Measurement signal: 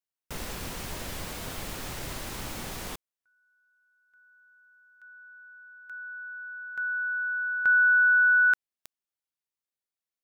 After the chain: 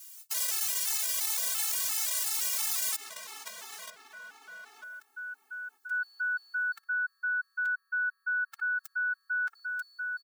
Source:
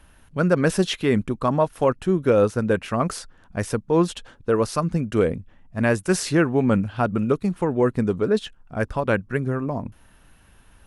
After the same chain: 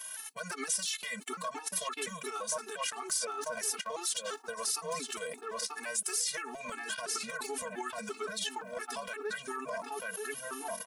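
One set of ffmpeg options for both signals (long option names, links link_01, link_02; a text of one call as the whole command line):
ffmpeg -i in.wav -filter_complex "[0:a]aecho=1:1:4.6:0.7,asplit=2[link_01][link_02];[link_02]adelay=939,lowpass=frequency=1600:poles=1,volume=-6.5dB,asplit=2[link_03][link_04];[link_04]adelay=939,lowpass=frequency=1600:poles=1,volume=0.32,asplit=2[link_05][link_06];[link_06]adelay=939,lowpass=frequency=1600:poles=1,volume=0.32,asplit=2[link_07][link_08];[link_08]adelay=939,lowpass=frequency=1600:poles=1,volume=0.32[link_09];[link_03][link_05][link_07][link_09]amix=inputs=4:normalize=0[link_10];[link_01][link_10]amix=inputs=2:normalize=0,agate=range=-23dB:threshold=-39dB:ratio=16:release=32:detection=peak,equalizer=frequency=6900:width_type=o:width=1.8:gain=7,areverse,acompressor=mode=upward:threshold=-19dB:ratio=2.5:attack=5.1:release=43:knee=2.83:detection=peak,areverse,highpass=910,acompressor=threshold=-29dB:ratio=16:attack=0.18:release=119:knee=1:detection=peak,aemphasis=mode=production:type=50kf,afftfilt=real='re*gt(sin(2*PI*2.9*pts/sr)*(1-2*mod(floor(b*sr/1024/230),2)),0)':imag='im*gt(sin(2*PI*2.9*pts/sr)*(1-2*mod(floor(b*sr/1024/230),2)),0)':win_size=1024:overlap=0.75,volume=1dB" out.wav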